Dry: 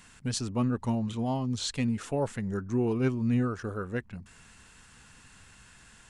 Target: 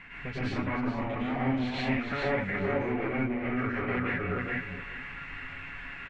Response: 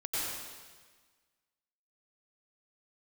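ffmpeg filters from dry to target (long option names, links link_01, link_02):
-filter_complex "[0:a]aemphasis=mode=reproduction:type=50kf,aecho=1:1:7.1:0.39,aecho=1:1:421|842:0.398|0.0597,acompressor=threshold=-34dB:ratio=10,aeval=exprs='0.0211*(abs(mod(val(0)/0.0211+3,4)-2)-1)':channel_layout=same,lowpass=frequency=2200:width_type=q:width=5.3,bandreject=frequency=60:width_type=h:width=6,bandreject=frequency=120:width_type=h:width=6[link_01];[1:a]atrim=start_sample=2205,afade=type=out:start_time=0.22:duration=0.01,atrim=end_sample=10143,asetrate=38367,aresample=44100[link_02];[link_01][link_02]afir=irnorm=-1:irlink=0,volume=5.5dB"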